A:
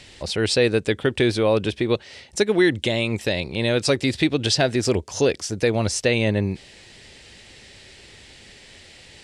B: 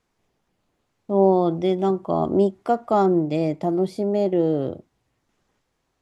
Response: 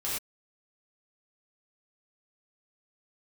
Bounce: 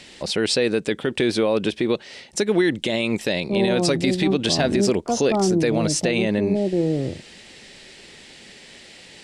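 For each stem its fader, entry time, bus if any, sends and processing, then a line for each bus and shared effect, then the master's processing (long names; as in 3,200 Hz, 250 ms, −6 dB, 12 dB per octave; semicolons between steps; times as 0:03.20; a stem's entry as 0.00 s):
+2.0 dB, 0.00 s, no send, low shelf with overshoot 130 Hz −9 dB, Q 1.5
−7.0 dB, 2.40 s, no send, spectral tilt −4 dB per octave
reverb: not used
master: brickwall limiter −10 dBFS, peak gain reduction 7.5 dB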